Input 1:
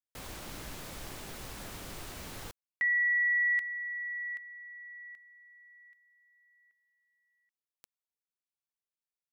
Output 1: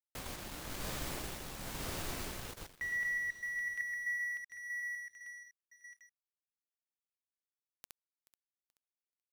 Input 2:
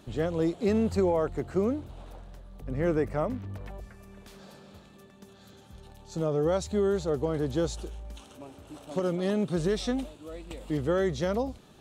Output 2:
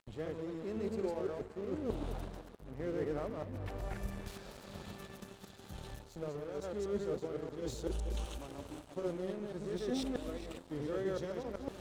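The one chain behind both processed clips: chunks repeated in reverse 127 ms, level -0.5 dB; dynamic bell 410 Hz, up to +5 dB, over -35 dBFS, Q 1.5; reverse; compression 8:1, threshold -39 dBFS; reverse; tremolo 1 Hz, depth 45%; on a send: echo whose repeats swap between lows and highs 215 ms, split 820 Hz, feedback 71%, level -11 dB; on the sum: crossover distortion -56 dBFS; trim +5.5 dB

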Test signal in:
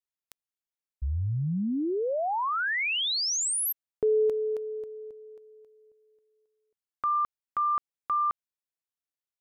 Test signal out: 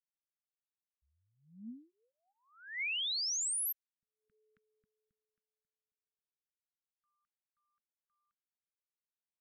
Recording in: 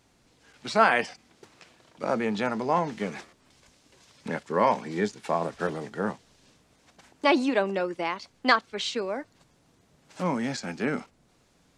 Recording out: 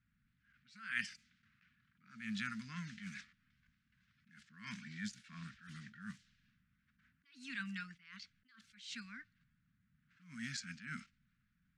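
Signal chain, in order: elliptic band-stop 210–1500 Hz, stop band 40 dB; level-controlled noise filter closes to 1.3 kHz, open at -30.5 dBFS; bass shelf 320 Hz -4 dB; attacks held to a fixed rise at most 110 dB/s; trim -6.5 dB

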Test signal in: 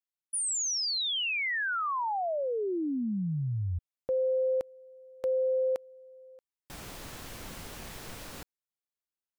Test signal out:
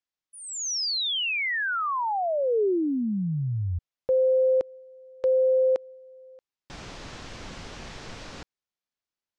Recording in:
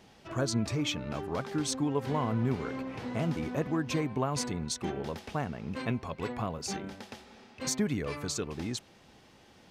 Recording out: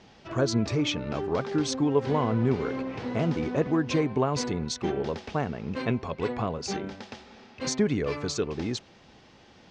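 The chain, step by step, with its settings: low-pass 6.4 kHz 24 dB/octave; dynamic bell 420 Hz, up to +5 dB, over -45 dBFS, Q 1.8; trim +3.5 dB

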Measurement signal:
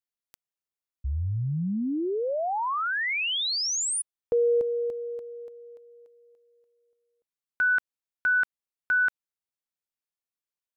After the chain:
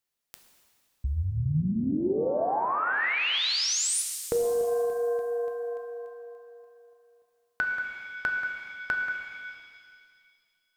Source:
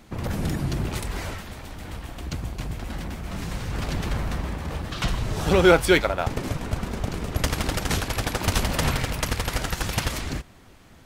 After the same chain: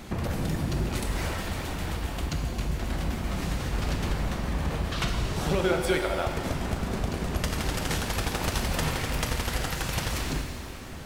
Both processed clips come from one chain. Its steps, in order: compression 3:1, threshold -39 dBFS; pitch-shifted reverb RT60 2 s, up +7 st, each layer -8 dB, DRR 3.5 dB; trim +8 dB

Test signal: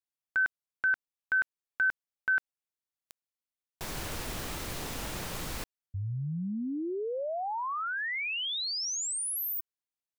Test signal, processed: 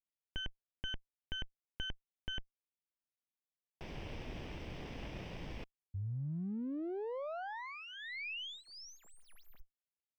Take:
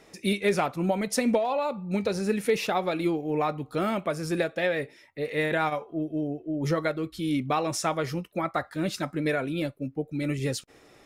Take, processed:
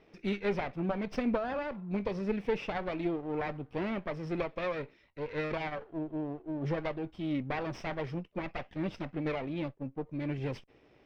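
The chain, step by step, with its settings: comb filter that takes the minimum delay 0.36 ms; distance through air 250 m; trim -5 dB

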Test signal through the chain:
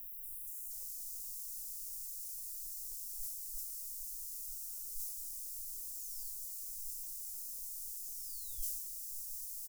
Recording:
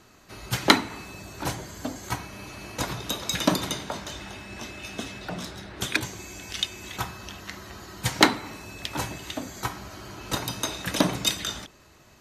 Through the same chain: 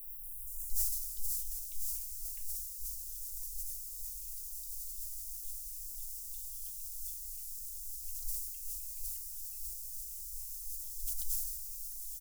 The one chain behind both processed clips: dynamic bell 480 Hz, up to +5 dB, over -47 dBFS, Q 2.6; steep low-pass 5.6 kHz 36 dB/octave; feedback comb 250 Hz, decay 0.27 s, harmonics all, mix 50%; feedback delay 162 ms, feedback 57%, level -23 dB; word length cut 10-bit, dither triangular; inverse Chebyshev band-stop 100–3700 Hz, stop band 70 dB; bass shelf 150 Hz +11 dB; ever faster or slower copies 236 ms, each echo -5 st, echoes 3; decay stretcher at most 41 dB/s; trim +16.5 dB

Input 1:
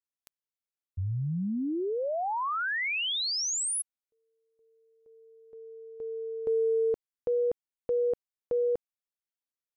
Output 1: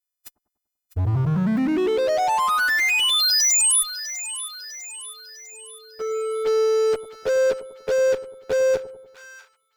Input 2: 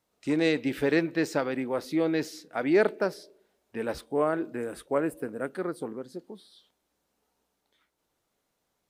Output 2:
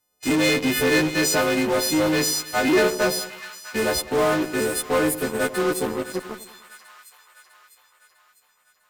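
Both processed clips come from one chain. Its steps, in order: partials quantised in pitch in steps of 3 st; bass shelf 72 Hz +5 dB; band-stop 4.4 kHz, Q 26; in parallel at -4.5 dB: fuzz box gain 36 dB, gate -40 dBFS; on the sum: two-band feedback delay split 1 kHz, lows 97 ms, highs 651 ms, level -13 dB; trim -3.5 dB

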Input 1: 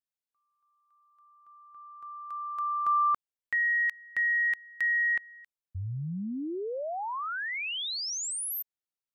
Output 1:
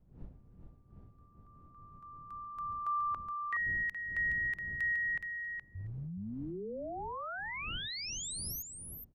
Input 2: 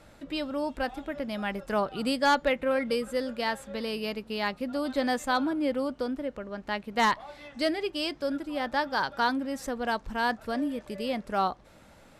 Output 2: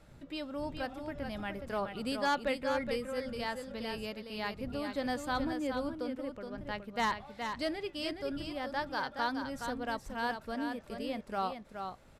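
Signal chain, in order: wind noise 130 Hz -46 dBFS; delay 420 ms -6.5 dB; trim -7.5 dB

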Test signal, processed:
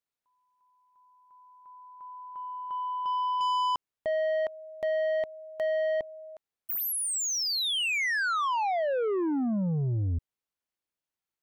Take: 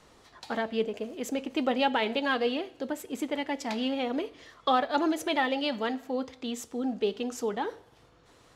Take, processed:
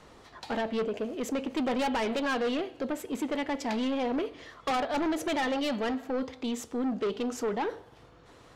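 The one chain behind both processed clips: treble shelf 3.8 kHz -7 dB; saturation -30.5 dBFS; trim +5 dB

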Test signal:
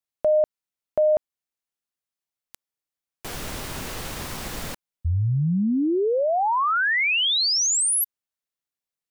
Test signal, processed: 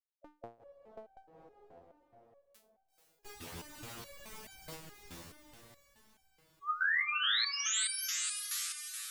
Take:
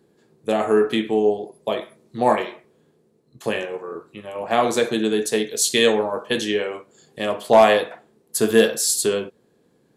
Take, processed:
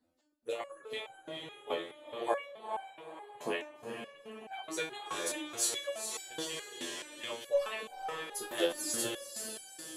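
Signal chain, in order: harmonic-percussive separation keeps percussive; echo that smears into a reverb 461 ms, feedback 51%, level -4 dB; resonator arpeggio 4.7 Hz 85–770 Hz

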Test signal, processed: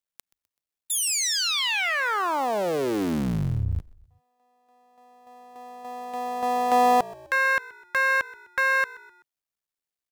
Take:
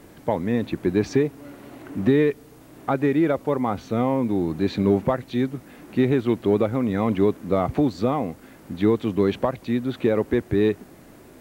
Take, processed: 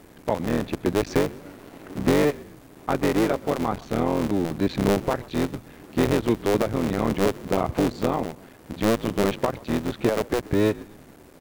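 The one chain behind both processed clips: cycle switcher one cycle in 3, muted; frequency-shifting echo 127 ms, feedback 45%, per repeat -57 Hz, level -21 dB

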